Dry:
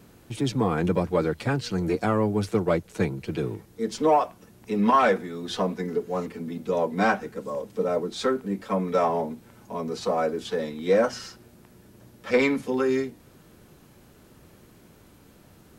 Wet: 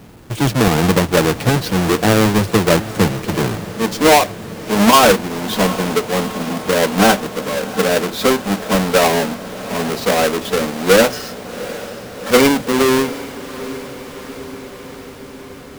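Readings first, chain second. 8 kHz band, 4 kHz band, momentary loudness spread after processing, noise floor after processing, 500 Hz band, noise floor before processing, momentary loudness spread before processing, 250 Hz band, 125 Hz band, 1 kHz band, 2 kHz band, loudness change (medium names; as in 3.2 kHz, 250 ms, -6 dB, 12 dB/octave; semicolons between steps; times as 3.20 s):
+21.0 dB, +18.0 dB, 18 LU, -35 dBFS, +9.0 dB, -54 dBFS, 11 LU, +10.5 dB, +11.0 dB, +9.5 dB, +13.0 dB, +10.5 dB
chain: square wave that keeps the level; echo that smears into a reverb 750 ms, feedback 69%, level -15 dB; trim +6 dB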